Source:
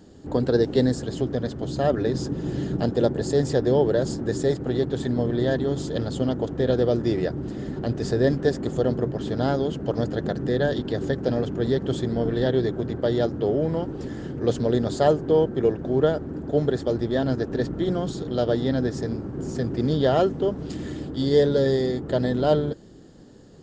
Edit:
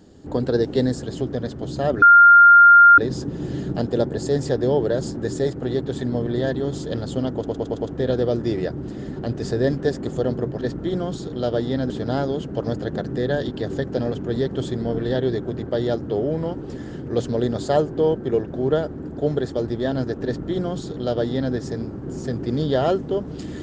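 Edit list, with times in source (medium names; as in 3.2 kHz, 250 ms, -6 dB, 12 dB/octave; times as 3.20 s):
2.02 s: add tone 1.4 kHz -6 dBFS 0.96 s
6.41 s: stutter 0.11 s, 5 plays
17.56–18.85 s: copy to 9.21 s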